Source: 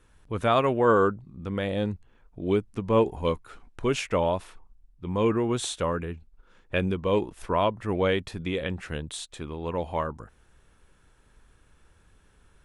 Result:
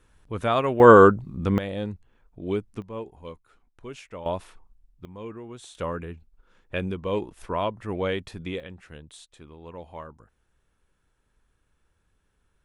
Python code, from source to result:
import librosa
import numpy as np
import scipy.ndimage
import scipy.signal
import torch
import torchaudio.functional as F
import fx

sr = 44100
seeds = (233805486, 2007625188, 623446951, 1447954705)

y = fx.gain(x, sr, db=fx.steps((0.0, -1.0), (0.8, 9.0), (1.58, -3.0), (2.82, -14.0), (4.26, -2.0), (5.05, -14.5), (5.75, -3.0), (8.6, -11.0)))